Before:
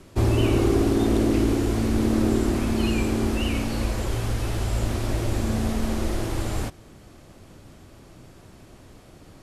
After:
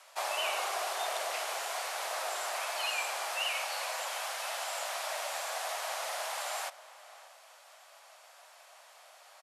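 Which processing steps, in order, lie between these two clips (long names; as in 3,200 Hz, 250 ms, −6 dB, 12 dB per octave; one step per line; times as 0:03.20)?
Butterworth high-pass 620 Hz 48 dB per octave
slap from a distant wall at 100 metres, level −16 dB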